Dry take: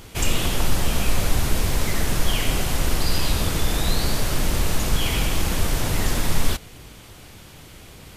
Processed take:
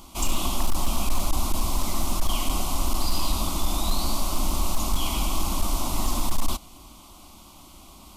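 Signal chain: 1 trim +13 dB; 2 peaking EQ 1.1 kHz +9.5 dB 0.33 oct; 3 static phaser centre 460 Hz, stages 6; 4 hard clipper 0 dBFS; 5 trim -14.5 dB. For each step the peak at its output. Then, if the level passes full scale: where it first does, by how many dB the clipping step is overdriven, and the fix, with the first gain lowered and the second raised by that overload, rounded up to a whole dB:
+7.0 dBFS, +7.5 dBFS, +6.5 dBFS, 0.0 dBFS, -14.5 dBFS; step 1, 6.5 dB; step 1 +6 dB, step 5 -7.5 dB

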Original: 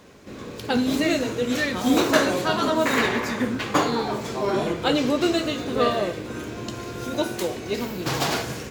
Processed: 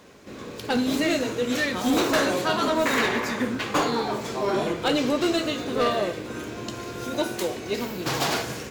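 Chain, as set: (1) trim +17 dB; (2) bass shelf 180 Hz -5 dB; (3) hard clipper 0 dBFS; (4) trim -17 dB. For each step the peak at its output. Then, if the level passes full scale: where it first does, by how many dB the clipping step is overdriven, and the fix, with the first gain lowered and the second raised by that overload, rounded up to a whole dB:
+10.5 dBFS, +10.0 dBFS, 0.0 dBFS, -17.0 dBFS; step 1, 10.0 dB; step 1 +7 dB, step 4 -7 dB

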